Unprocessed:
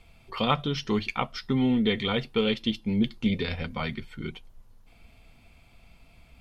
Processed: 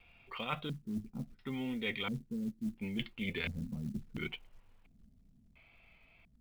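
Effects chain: Doppler pass-by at 2.73 s, 8 m/s, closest 5.8 m; wow and flutter 28 cents; LFO low-pass square 0.72 Hz 210–2600 Hz; reverse; compression 16:1, threshold -37 dBFS, peak gain reduction 20.5 dB; reverse; short-mantissa float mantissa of 4-bit; bass shelf 250 Hz -5 dB; trim +5 dB

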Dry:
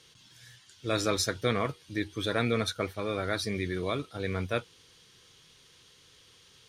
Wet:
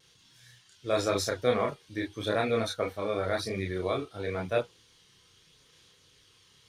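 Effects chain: dynamic bell 670 Hz, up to +8 dB, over -44 dBFS, Q 0.99; chorus voices 2, 0.43 Hz, delay 30 ms, depth 2.8 ms; vibrato 0.91 Hz 22 cents

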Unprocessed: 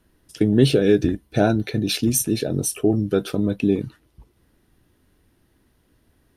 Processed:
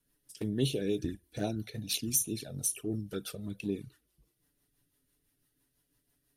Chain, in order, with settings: pre-emphasis filter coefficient 0.8; rotary cabinet horn 6 Hz; on a send at -23 dB: reverberation, pre-delay 45 ms; on the sum: touch-sensitive flanger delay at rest 7.2 ms, full sweep at -27 dBFS; trim +1 dB

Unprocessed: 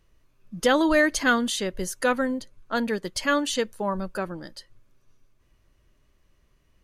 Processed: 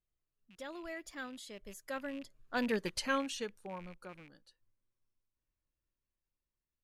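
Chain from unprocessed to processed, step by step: rattle on loud lows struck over -39 dBFS, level -26 dBFS; Doppler pass-by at 2.80 s, 24 m/s, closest 5.6 m; trim -5.5 dB

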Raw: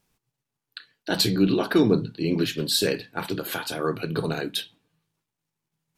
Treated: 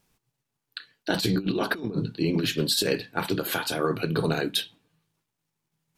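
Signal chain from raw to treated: compressor with a negative ratio -24 dBFS, ratio -0.5

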